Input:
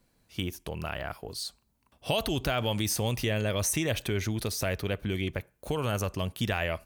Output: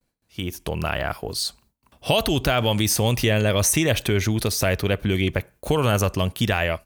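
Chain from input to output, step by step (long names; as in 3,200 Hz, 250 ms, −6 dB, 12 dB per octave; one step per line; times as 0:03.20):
noise gate with hold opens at −57 dBFS
automatic gain control gain up to 16 dB
level −5 dB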